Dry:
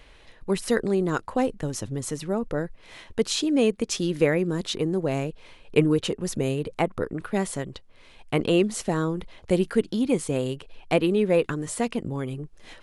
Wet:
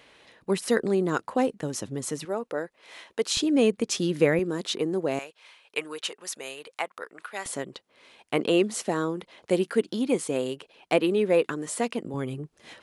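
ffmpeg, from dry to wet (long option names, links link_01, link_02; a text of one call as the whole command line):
ffmpeg -i in.wav -af "asetnsamples=nb_out_samples=441:pad=0,asendcmd='2.25 highpass f 400;3.37 highpass f 120;4.39 highpass f 250;5.19 highpass f 970;7.46 highpass f 250;12.14 highpass f 120',highpass=170" out.wav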